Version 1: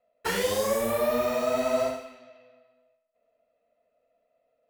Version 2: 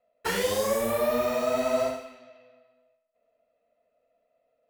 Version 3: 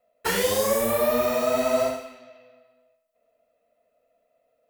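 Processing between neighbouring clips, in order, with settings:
no audible change
treble shelf 9.7 kHz +7 dB; trim +3 dB

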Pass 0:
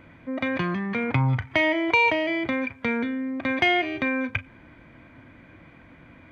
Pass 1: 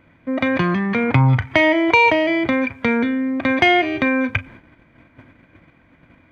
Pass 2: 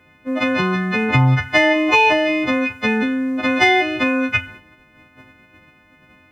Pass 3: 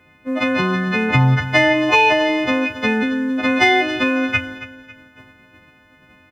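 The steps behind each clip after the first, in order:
gate -47 dBFS, range -12 dB; dynamic bell 2.8 kHz, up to -3 dB, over -33 dBFS, Q 0.9; trim +8 dB
partials quantised in pitch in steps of 3 st; de-hum 98.87 Hz, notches 37
feedback delay 275 ms, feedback 37%, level -15 dB

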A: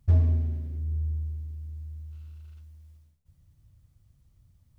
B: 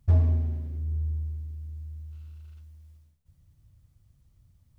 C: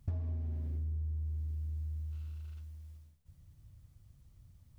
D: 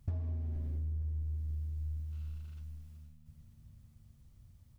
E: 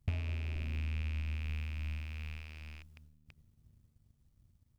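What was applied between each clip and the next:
dynamic bell 890 Hz, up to +5 dB, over -56 dBFS, Q 1.2
compression 16:1, threshold -35 dBFS, peak gain reduction 19 dB; trim +1.5 dB
frequency-shifting echo 468 ms, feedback 45%, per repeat -76 Hz, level -14.5 dB
rattle on loud lows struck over -46 dBFS, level -38 dBFS; power-law waveshaper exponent 1.4; trim +3 dB

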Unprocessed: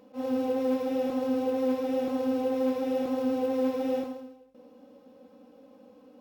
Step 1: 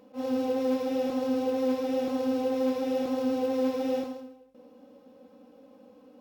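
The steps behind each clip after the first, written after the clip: dynamic bell 5.1 kHz, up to +5 dB, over -60 dBFS, Q 0.93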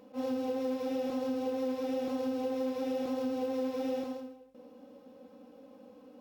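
compression 4:1, threshold -31 dBFS, peak gain reduction 7.5 dB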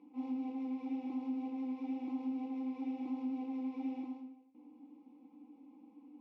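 vowel filter u; trim +5 dB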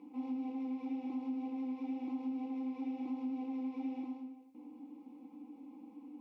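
compression 1.5:1, threshold -53 dBFS, peak gain reduction 7 dB; trim +6 dB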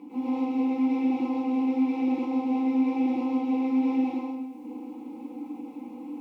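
reverberation, pre-delay 96 ms, DRR -6.5 dB; trim +9 dB

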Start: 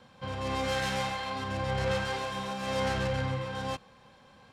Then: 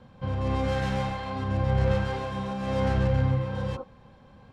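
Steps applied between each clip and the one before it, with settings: tilt EQ -3 dB/octave; spectral replace 3.54–3.80 s, 220–1500 Hz before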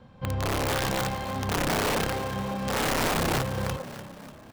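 integer overflow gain 21 dB; on a send: frequency-shifting echo 295 ms, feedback 53%, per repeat +39 Hz, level -12.5 dB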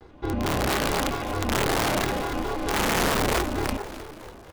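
ring modulator 180 Hz; vibrato with a chosen wave square 4.5 Hz, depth 250 cents; trim +5.5 dB

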